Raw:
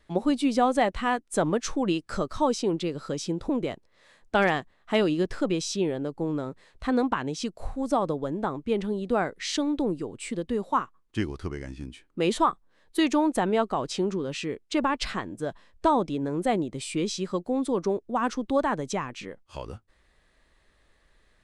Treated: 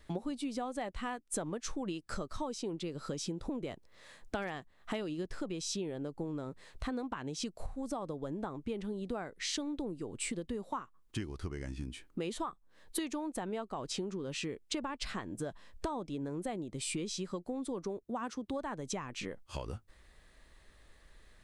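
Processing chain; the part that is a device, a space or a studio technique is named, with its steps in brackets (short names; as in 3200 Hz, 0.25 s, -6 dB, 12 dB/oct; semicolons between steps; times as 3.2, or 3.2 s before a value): ASMR close-microphone chain (low shelf 130 Hz +4.5 dB; compressor 6:1, threshold -37 dBFS, peak gain reduction 19 dB; high shelf 6500 Hz +6 dB); 18.03–18.54 HPF 54 Hz; gain +1 dB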